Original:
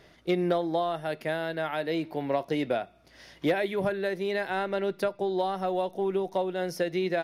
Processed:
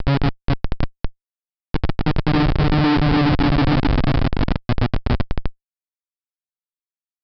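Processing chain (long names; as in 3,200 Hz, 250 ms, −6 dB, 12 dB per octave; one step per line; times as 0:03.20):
bass and treble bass +10 dB, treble −13 dB
extreme stretch with random phases 12×, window 0.25 s, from 0:02.33
low shelf with overshoot 390 Hz +13.5 dB, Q 1.5
comparator with hysteresis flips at −11 dBFS
downsampling to 11,025 Hz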